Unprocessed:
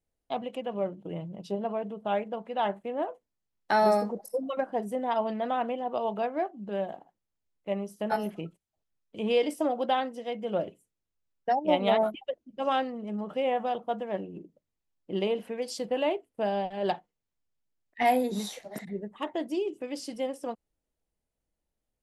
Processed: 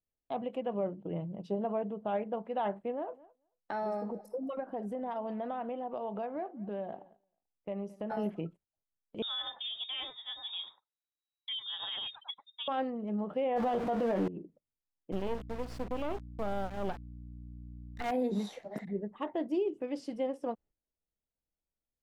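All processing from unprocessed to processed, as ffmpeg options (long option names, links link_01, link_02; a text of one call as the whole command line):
ffmpeg -i in.wav -filter_complex "[0:a]asettb=1/sr,asplit=3[link_01][link_02][link_03];[link_01]atrim=end=2.914[link_04];[link_02]atrim=start=2.91:end=8.17,asetpts=PTS-STARTPTS,afade=type=in:duration=0.004:curve=qsin,afade=type=out:start_time=5.256:duration=0.004:curve=qsin,acompressor=threshold=-34dB:ratio=3:attack=3.2:release=140:knee=1:detection=peak,aecho=1:1:219|438:0.0891|0.0214,atrim=end_sample=231966[link_05];[link_03]atrim=start=8.166[link_06];[link_04][link_05]acrossfade=duration=0.004:curve1=hsin:curve2=qsin[link_07];[link_07][link_06]acrossfade=duration=0.004:curve1=qsin:curve2=hsin,asettb=1/sr,asplit=3[link_08][link_09][link_10];[link_08]atrim=end=9.224[link_11];[link_09]atrim=start=9.22:end=12.68,asetpts=PTS-STARTPTS,afade=type=in:duration=0.004:curve=qsin,afade=type=out:start_time=3.456:duration=0.004:curve=qsin,acrossover=split=2900[link_12][link_13];[link_13]adelay=100[link_14];[link_12][link_14]amix=inputs=2:normalize=0,atrim=end_sample=152586,lowpass=frequency=3300:width_type=q:width=0.5098,lowpass=frequency=3300:width_type=q:width=0.6013,lowpass=frequency=3300:width_type=q:width=0.9,lowpass=frequency=3300:width_type=q:width=2.563,afreqshift=-3900[link_15];[link_10]atrim=start=12.676[link_16];[link_11][link_15]acrossfade=duration=0.004:curve1=hsin:curve2=qsin[link_17];[link_17][link_16]acrossfade=duration=0.004:curve1=qsin:curve2=hsin,asettb=1/sr,asplit=3[link_18][link_19][link_20];[link_18]atrim=end=13.564[link_21];[link_19]atrim=start=13.56:end=14.28,asetpts=PTS-STARTPTS,afade=type=in:duration=0.004:curve=qsin,afade=type=out:start_time=0.716:duration=0.004:curve=qsin,aeval=exprs='val(0)+0.5*0.015*sgn(val(0))':channel_layout=same,acontrast=39,asplit=2[link_22][link_23];[link_23]adelay=17,volume=-7.5dB[link_24];[link_22][link_24]amix=inputs=2:normalize=0,atrim=end_sample=31752[link_25];[link_20]atrim=start=14.276[link_26];[link_21][link_25]acrossfade=duration=0.004:curve1=hsin:curve2=qsin[link_27];[link_27][link_26]acrossfade=duration=0.004:curve1=qsin:curve2=hsin,asettb=1/sr,asplit=3[link_28][link_29][link_30];[link_28]atrim=end=15.124[link_31];[link_29]atrim=start=15.12:end=18.11,asetpts=PTS-STARTPTS,afade=type=in:duration=0.004:curve=qsin,afade=type=out:start_time=2.986:duration=0.004:curve=qsin,acrusher=bits=4:dc=4:mix=0:aa=0.000001,aeval=exprs='val(0)+0.00562*(sin(2*PI*60*n/s)+sin(2*PI*2*60*n/s)/2+sin(2*PI*3*60*n/s)/3+sin(2*PI*4*60*n/s)/4+sin(2*PI*5*60*n/s)/5)':channel_layout=same[link_32];[link_30]atrim=start=18.106[link_33];[link_31][link_32]acrossfade=duration=0.004:curve1=hsin:curve2=qsin[link_34];[link_34][link_33]acrossfade=duration=0.004:curve1=qsin:curve2=hsin,alimiter=limit=-22.5dB:level=0:latency=1:release=53,lowpass=frequency=1300:poles=1,agate=range=-10dB:threshold=-58dB:ratio=16:detection=peak" out.wav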